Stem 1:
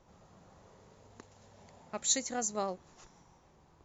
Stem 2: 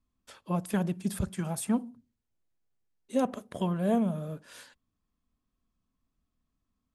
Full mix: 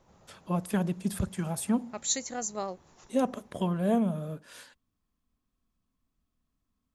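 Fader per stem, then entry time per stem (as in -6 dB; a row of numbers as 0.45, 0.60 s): 0.0, +0.5 dB; 0.00, 0.00 s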